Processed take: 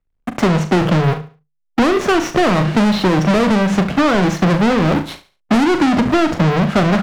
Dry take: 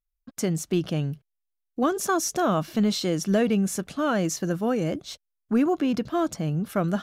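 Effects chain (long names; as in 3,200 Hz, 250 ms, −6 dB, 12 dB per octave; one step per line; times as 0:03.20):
each half-wave held at its own peak
low-pass filter 2,200 Hz 12 dB per octave
mains-hum notches 50/100/150/200/250 Hz
leveller curve on the samples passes 3
double-tracking delay 39 ms −10 dB
repeating echo 71 ms, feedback 26%, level −15.5 dB
boost into a limiter +10.5 dB
multiband upward and downward compressor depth 40%
level −8 dB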